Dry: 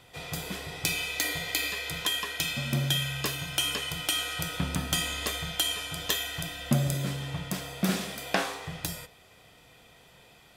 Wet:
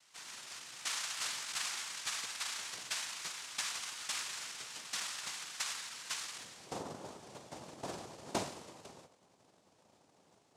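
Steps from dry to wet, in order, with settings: band-pass sweep 2200 Hz -> 680 Hz, 6.19–6.83; noise vocoder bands 2; gain -3.5 dB

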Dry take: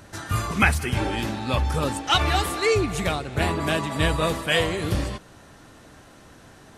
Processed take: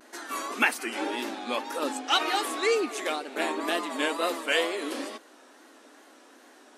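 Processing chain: wow and flutter 110 cents; brick-wall FIR high-pass 230 Hz; gain -3.5 dB

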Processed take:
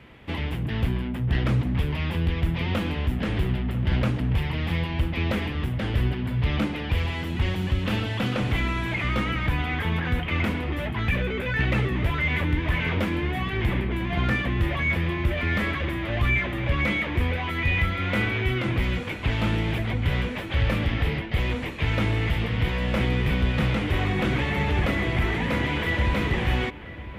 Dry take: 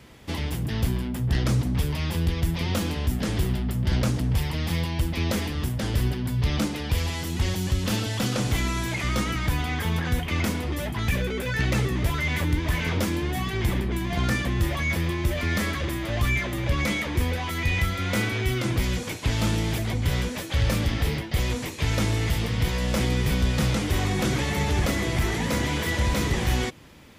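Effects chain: resonant high shelf 4000 Hz -13.5 dB, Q 1.5; dark delay 0.996 s, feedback 62%, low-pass 3100 Hz, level -17 dB

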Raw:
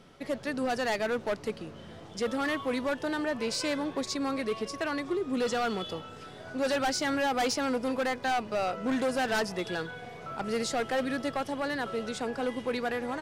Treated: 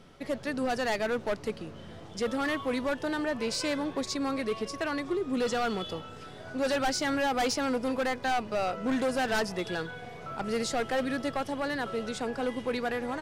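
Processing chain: low shelf 71 Hz +7 dB

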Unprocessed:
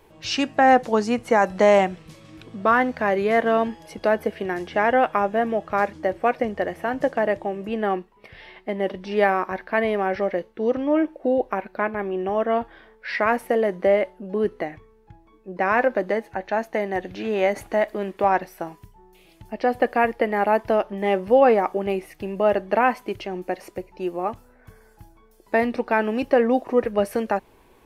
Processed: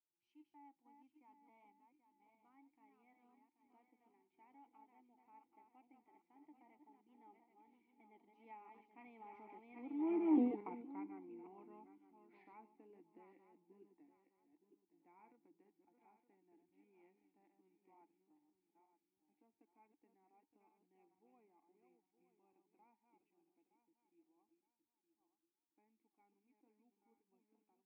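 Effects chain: regenerating reverse delay 0.425 s, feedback 57%, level -6 dB; Doppler pass-by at 10.37, 27 m/s, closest 2.3 m; vowel filter u; gain +1.5 dB

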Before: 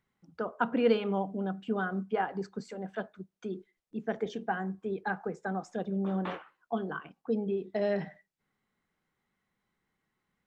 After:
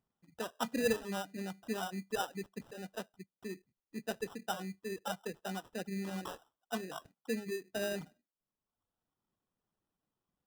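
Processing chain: reverb removal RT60 1.1 s; sample-rate reducer 2200 Hz, jitter 0%; gain -5.5 dB

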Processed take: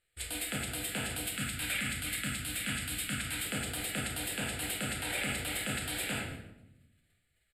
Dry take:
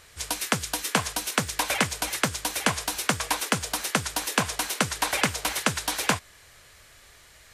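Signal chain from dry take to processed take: 1.22–3.45 band shelf 580 Hz -10 dB; gate -49 dBFS, range -23 dB; thirty-one-band EQ 160 Hz -7 dB, 1250 Hz +9 dB, 8000 Hz +10 dB; shoebox room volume 280 m³, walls mixed, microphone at 0.83 m; limiter -16 dBFS, peak gain reduction 12.5 dB; fixed phaser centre 2600 Hz, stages 4; echo 0.114 s -14 dB; gain -4 dB

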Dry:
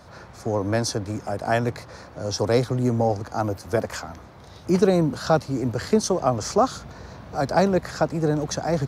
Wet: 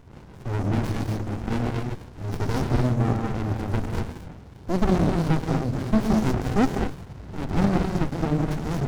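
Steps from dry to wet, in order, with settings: non-linear reverb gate 0.27 s rising, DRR 1 dB; running maximum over 65 samples

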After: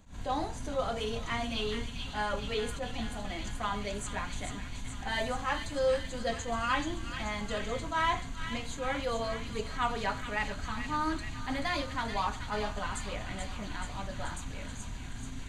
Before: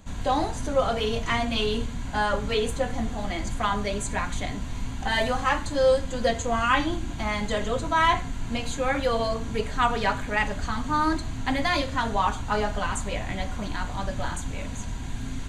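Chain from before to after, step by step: thin delay 0.432 s, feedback 70%, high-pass 1900 Hz, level -5.5 dB; attack slew limiter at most 170 dB/s; gain -8 dB

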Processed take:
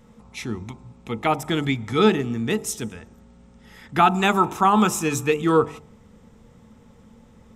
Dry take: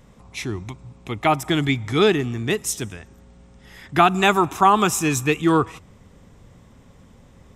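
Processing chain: de-hum 49.7 Hz, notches 21; small resonant body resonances 220/470/870/1300 Hz, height 11 dB, ringing for 95 ms; gain -3.5 dB

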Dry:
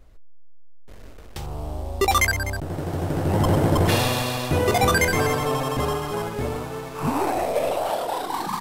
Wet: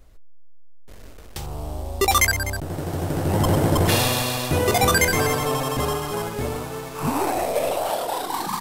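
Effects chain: high shelf 4700 Hz +7 dB

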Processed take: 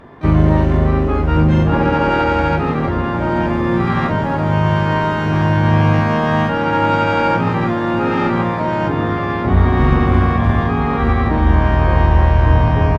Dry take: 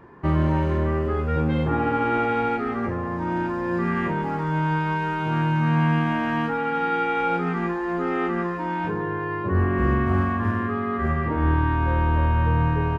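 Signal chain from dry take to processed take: dynamic EQ 100 Hz, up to +4 dB, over -33 dBFS, Q 1.9; tube stage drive 13 dB, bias 0.25; harmoniser -7 st -1 dB, +12 st -13 dB; on a send: diffused feedback echo 1.032 s, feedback 63%, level -11 dB; on the sum: gain +6 dB

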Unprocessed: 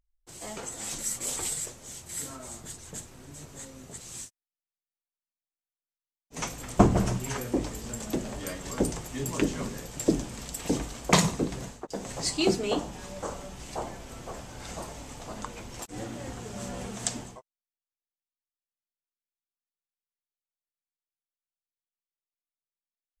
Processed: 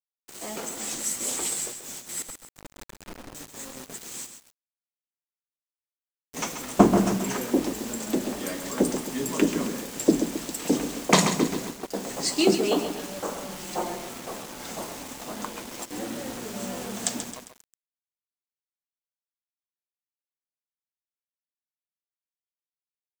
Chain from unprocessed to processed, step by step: resonant low shelf 150 Hz -12.5 dB, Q 1.5; 2.22–3.35 Schmitt trigger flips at -53 dBFS; 13.48–14.09 comb 5.6 ms, depth 80%; bit-crush 7-bit; lo-fi delay 0.134 s, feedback 55%, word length 7-bit, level -8.5 dB; gain +2.5 dB

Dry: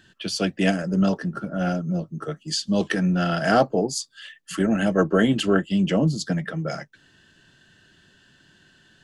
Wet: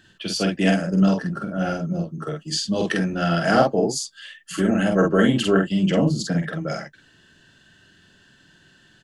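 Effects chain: doubler 47 ms -3 dB

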